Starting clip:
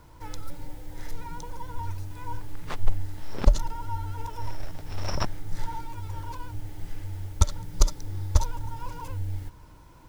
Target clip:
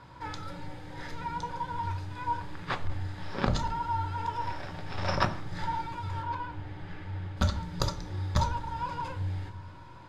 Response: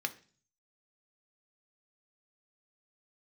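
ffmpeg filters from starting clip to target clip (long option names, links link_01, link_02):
-filter_complex "[0:a]asetnsamples=nb_out_samples=441:pad=0,asendcmd='6.22 lowpass f 3100;7.37 lowpass f 5600',lowpass=5900,volume=12.5dB,asoftclip=hard,volume=-12.5dB[link_01];[1:a]atrim=start_sample=2205,asetrate=29988,aresample=44100[link_02];[link_01][link_02]afir=irnorm=-1:irlink=0"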